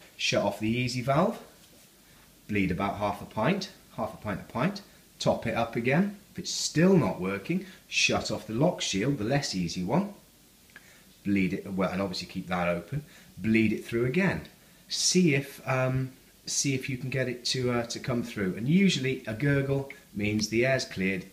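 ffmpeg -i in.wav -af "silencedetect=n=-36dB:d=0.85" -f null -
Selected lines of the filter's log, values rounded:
silence_start: 1.42
silence_end: 2.49 | silence_duration: 1.08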